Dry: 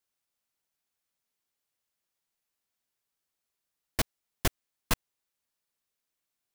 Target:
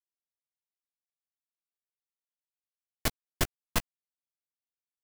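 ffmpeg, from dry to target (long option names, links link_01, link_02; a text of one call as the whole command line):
ffmpeg -i in.wav -filter_complex "[0:a]asplit=2[link_01][link_02];[link_02]adelay=17,volume=-12.5dB[link_03];[link_01][link_03]amix=inputs=2:normalize=0,aeval=exprs='sgn(val(0))*max(abs(val(0))-0.01,0)':channel_layout=same,atempo=1.3" out.wav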